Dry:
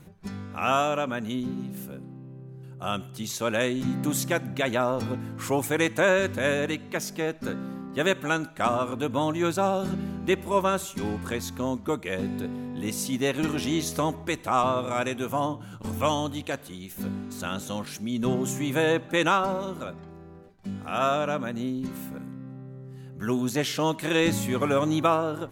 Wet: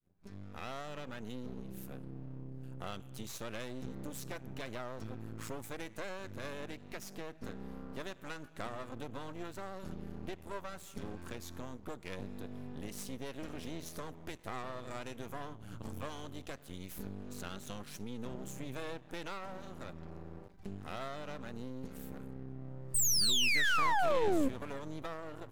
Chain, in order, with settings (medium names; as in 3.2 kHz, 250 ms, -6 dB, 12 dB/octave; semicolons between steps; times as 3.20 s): fade-in on the opening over 1.45 s; bass shelf 130 Hz +7.5 dB; compression 4:1, threshold -39 dBFS, peak gain reduction 18.5 dB; painted sound fall, 22.94–24.49 s, 250–8800 Hz -25 dBFS; half-wave rectifier